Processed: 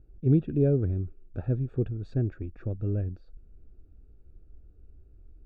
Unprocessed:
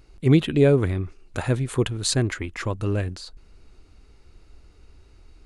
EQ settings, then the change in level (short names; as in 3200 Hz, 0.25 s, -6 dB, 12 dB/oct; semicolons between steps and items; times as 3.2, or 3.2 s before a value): running mean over 43 samples; air absorption 140 m; low shelf 110 Hz +5 dB; -5.5 dB